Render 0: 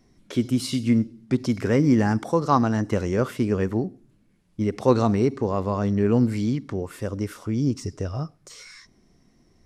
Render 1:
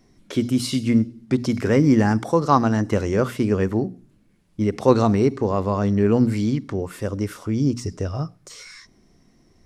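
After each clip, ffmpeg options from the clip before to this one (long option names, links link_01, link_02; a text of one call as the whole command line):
ffmpeg -i in.wav -af "bandreject=frequency=60:width_type=h:width=6,bandreject=frequency=120:width_type=h:width=6,bandreject=frequency=180:width_type=h:width=6,bandreject=frequency=240:width_type=h:width=6,volume=3dB" out.wav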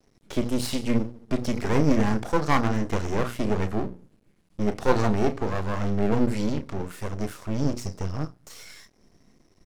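ffmpeg -i in.wav -filter_complex "[0:a]asplit=2[link_01][link_02];[link_02]adelay=33,volume=-10dB[link_03];[link_01][link_03]amix=inputs=2:normalize=0,aeval=exprs='max(val(0),0)':channel_layout=same" out.wav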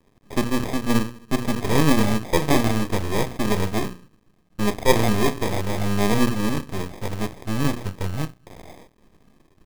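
ffmpeg -i in.wav -af "acrusher=samples=31:mix=1:aa=0.000001,volume=3dB" out.wav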